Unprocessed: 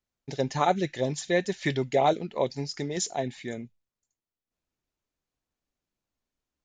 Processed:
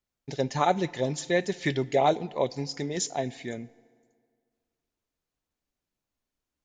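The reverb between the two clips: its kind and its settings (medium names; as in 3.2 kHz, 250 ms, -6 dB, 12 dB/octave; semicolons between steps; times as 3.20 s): FDN reverb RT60 2 s, low-frequency decay 1×, high-frequency decay 0.7×, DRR 20 dB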